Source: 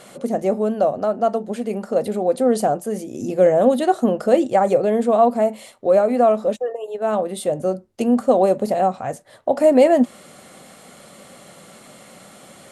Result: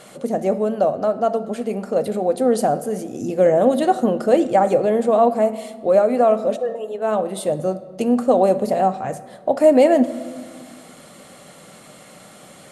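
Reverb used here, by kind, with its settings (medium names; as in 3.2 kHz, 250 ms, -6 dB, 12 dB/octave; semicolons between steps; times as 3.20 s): simulated room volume 2200 m³, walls mixed, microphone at 0.5 m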